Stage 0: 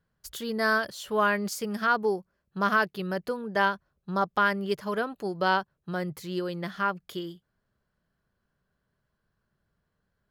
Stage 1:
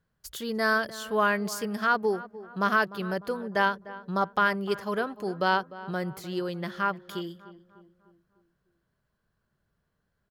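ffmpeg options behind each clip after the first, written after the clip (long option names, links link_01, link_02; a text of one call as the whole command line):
ffmpeg -i in.wav -filter_complex "[0:a]asplit=2[link_01][link_02];[link_02]adelay=300,lowpass=frequency=1600:poles=1,volume=-16dB,asplit=2[link_03][link_04];[link_04]adelay=300,lowpass=frequency=1600:poles=1,volume=0.51,asplit=2[link_05][link_06];[link_06]adelay=300,lowpass=frequency=1600:poles=1,volume=0.51,asplit=2[link_07][link_08];[link_08]adelay=300,lowpass=frequency=1600:poles=1,volume=0.51,asplit=2[link_09][link_10];[link_10]adelay=300,lowpass=frequency=1600:poles=1,volume=0.51[link_11];[link_01][link_03][link_05][link_07][link_09][link_11]amix=inputs=6:normalize=0" out.wav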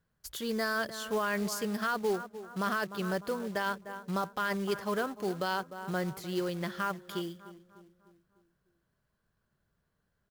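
ffmpeg -i in.wav -filter_complex "[0:a]acrossover=split=4100[link_01][link_02];[link_01]alimiter=limit=-21.5dB:level=0:latency=1:release=18[link_03];[link_03][link_02]amix=inputs=2:normalize=0,acrusher=bits=4:mode=log:mix=0:aa=0.000001,volume=-1.5dB" out.wav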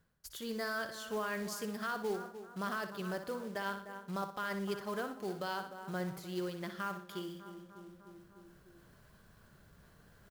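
ffmpeg -i in.wav -af "aecho=1:1:61|122|183|244:0.335|0.124|0.0459|0.017,areverse,acompressor=mode=upward:threshold=-35dB:ratio=2.5,areverse,volume=-6.5dB" out.wav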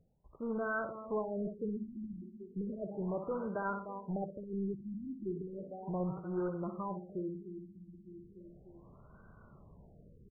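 ffmpeg -i in.wav -filter_complex "[0:a]asplit=2[link_01][link_02];[link_02]aeval=exprs='(mod(56.2*val(0)+1,2)-1)/56.2':channel_layout=same,volume=-11dB[link_03];[link_01][link_03]amix=inputs=2:normalize=0,afftfilt=real='re*lt(b*sr/1024,340*pow(1600/340,0.5+0.5*sin(2*PI*0.35*pts/sr)))':imag='im*lt(b*sr/1024,340*pow(1600/340,0.5+0.5*sin(2*PI*0.35*pts/sr)))':win_size=1024:overlap=0.75,volume=2.5dB" out.wav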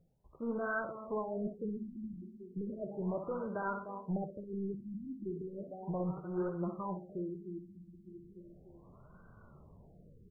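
ffmpeg -i in.wav -af "flanger=delay=5.5:depth=8:regen=61:speed=1.2:shape=sinusoidal,volume=4dB" out.wav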